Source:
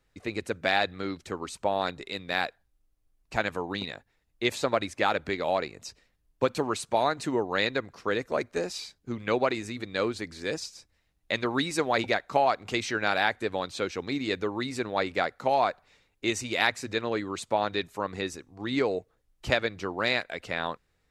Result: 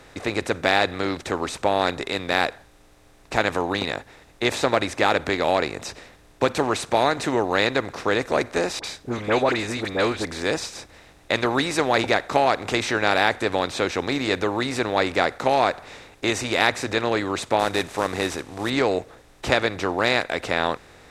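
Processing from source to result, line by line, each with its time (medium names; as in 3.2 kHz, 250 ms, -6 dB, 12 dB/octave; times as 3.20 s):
8.79–10.25 s: phase dispersion highs, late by 50 ms, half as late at 1.4 kHz
17.59–18.70 s: CVSD coder 64 kbps
whole clip: spectral levelling over time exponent 0.6; trim +2 dB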